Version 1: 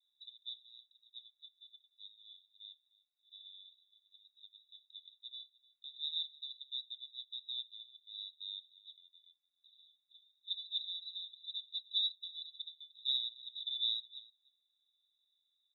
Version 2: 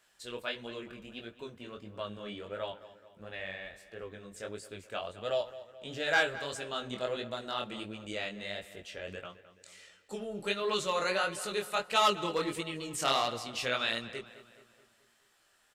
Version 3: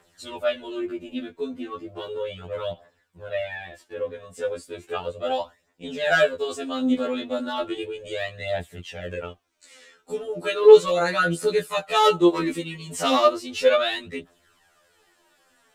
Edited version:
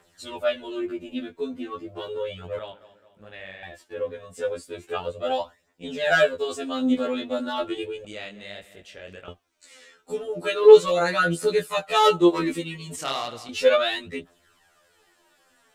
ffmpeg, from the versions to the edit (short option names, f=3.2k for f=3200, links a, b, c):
-filter_complex "[1:a]asplit=3[a][b][c];[2:a]asplit=4[d][e][f][g];[d]atrim=end=2.592[h];[a]atrim=start=2.588:end=3.632[i];[e]atrim=start=3.628:end=8.052[j];[b]atrim=start=8.048:end=9.282[k];[f]atrim=start=9.278:end=12.962[l];[c]atrim=start=12.958:end=13.492[m];[g]atrim=start=13.488[n];[h][i]acrossfade=d=0.004:c1=hsin:c2=hsin[o];[o][j]acrossfade=d=0.004:c1=hsin:c2=hsin[p];[p][k]acrossfade=d=0.004:c1=hsin:c2=hsin[q];[q][l]acrossfade=d=0.004:c1=hsin:c2=hsin[r];[r][m]acrossfade=d=0.004:c1=hsin:c2=hsin[s];[s][n]acrossfade=d=0.004:c1=hsin:c2=hsin"